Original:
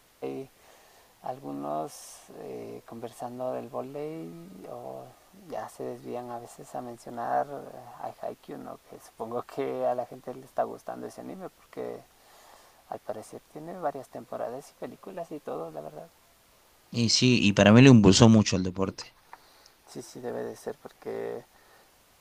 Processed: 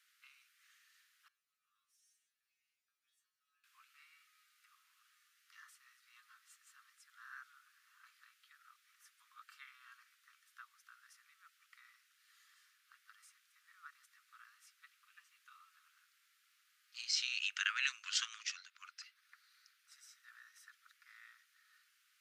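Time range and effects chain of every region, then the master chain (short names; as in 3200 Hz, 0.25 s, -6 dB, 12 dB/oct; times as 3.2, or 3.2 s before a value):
1.28–3.64 passive tone stack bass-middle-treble 5-5-5 + metallic resonator 60 Hz, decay 0.73 s, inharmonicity 0.002
whole clip: steep high-pass 1300 Hz 72 dB/oct; high shelf 4400 Hz -7 dB; gain -7.5 dB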